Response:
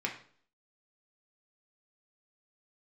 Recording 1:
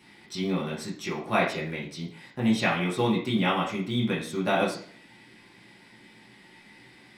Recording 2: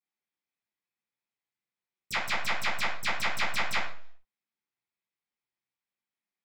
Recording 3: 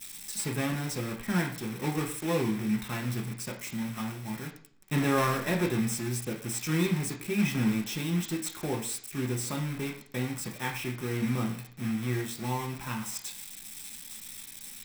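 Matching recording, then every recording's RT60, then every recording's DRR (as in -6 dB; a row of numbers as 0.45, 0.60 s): 3; 0.50, 0.50, 0.50 s; -6.0, -11.5, -0.5 dB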